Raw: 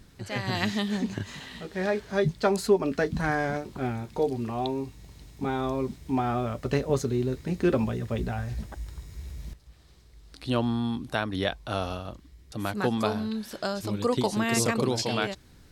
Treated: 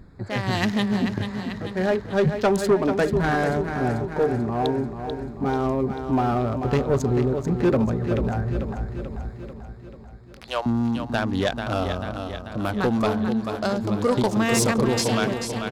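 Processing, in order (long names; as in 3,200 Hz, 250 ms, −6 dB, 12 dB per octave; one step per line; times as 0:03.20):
adaptive Wiener filter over 15 samples
0:09.30–0:10.66: high-pass filter 580 Hz 24 dB per octave
on a send: repeating echo 439 ms, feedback 57%, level −9 dB
on the sum: soft clipping −19 dBFS, distortion −15 dB
level +6.5 dB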